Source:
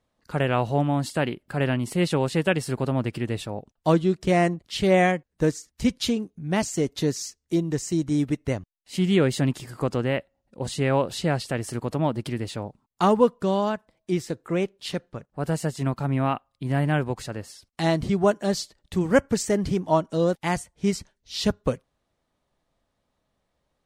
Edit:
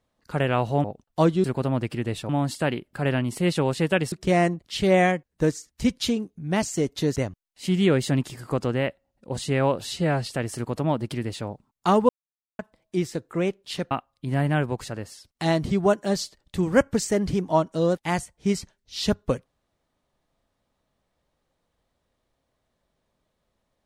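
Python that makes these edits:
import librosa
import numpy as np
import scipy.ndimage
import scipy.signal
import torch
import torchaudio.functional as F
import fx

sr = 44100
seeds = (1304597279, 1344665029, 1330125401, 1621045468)

y = fx.edit(x, sr, fx.swap(start_s=0.84, length_s=1.83, other_s=3.52, other_length_s=0.6),
    fx.cut(start_s=7.16, length_s=1.3),
    fx.stretch_span(start_s=11.11, length_s=0.3, factor=1.5),
    fx.silence(start_s=13.24, length_s=0.5),
    fx.cut(start_s=15.06, length_s=1.23), tone=tone)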